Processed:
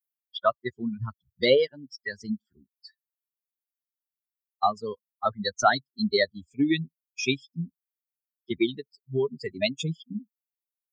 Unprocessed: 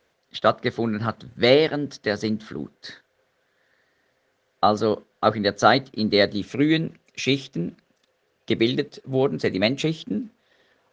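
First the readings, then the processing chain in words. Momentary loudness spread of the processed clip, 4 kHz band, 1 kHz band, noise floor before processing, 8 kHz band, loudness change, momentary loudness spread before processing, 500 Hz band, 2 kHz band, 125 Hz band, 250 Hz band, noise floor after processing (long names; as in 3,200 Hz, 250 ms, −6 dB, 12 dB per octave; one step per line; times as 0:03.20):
14 LU, −5.0 dB, −4.5 dB, −70 dBFS, can't be measured, −5.0 dB, 14 LU, −5.5 dB, −4.5 dB, −7.0 dB, −6.5 dB, below −85 dBFS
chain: spectral dynamics exaggerated over time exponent 3
low-shelf EQ 110 Hz −10 dB
in parallel at +2 dB: downward compressor, threshold −31 dBFS, peak gain reduction 15.5 dB
on the sum: level −1.5 dB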